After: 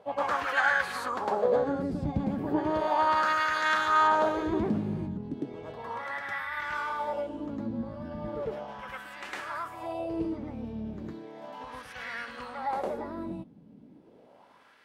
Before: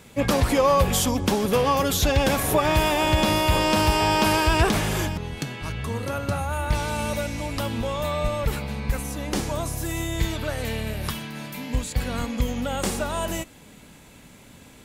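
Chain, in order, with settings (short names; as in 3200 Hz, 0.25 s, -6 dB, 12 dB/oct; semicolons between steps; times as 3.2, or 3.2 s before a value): reverse echo 0.106 s -4.5 dB; formant shift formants +5 st; wah 0.35 Hz 200–1800 Hz, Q 2.3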